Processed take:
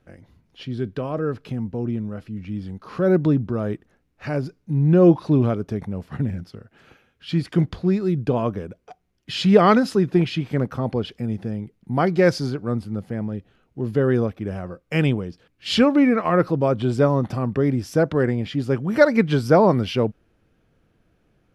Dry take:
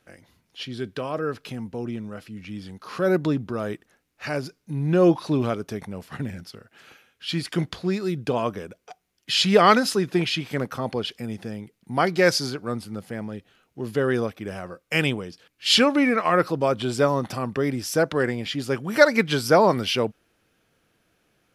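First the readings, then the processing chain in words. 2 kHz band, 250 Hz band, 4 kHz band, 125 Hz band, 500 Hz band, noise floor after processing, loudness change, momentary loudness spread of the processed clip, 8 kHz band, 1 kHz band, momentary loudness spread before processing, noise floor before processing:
−3.5 dB, +5.0 dB, −6.5 dB, +7.5 dB, +2.0 dB, −66 dBFS, +2.0 dB, 15 LU, can't be measured, −1.0 dB, 19 LU, −70 dBFS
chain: spectral tilt −3 dB per octave
level −1 dB

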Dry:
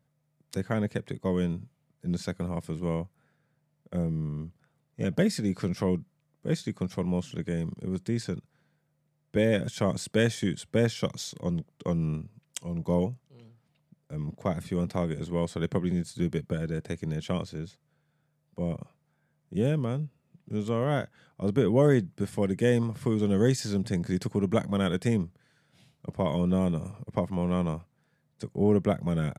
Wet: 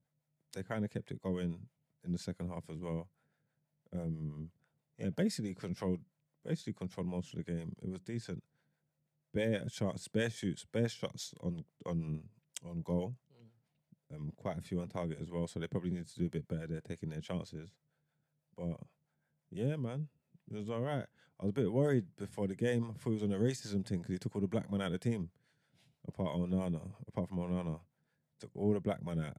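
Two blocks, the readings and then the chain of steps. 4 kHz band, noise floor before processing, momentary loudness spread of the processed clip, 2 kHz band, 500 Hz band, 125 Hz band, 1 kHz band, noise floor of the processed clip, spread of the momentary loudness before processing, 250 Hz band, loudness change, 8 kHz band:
−9.0 dB, −74 dBFS, 13 LU, −9.5 dB, −9.5 dB, −9.0 dB, −10.0 dB, −84 dBFS, 12 LU, −9.0 dB, −9.0 dB, −9.0 dB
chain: notch filter 1,200 Hz, Q 9.8
two-band tremolo in antiphase 6.1 Hz, depth 70%, crossover 470 Hz
level −6 dB

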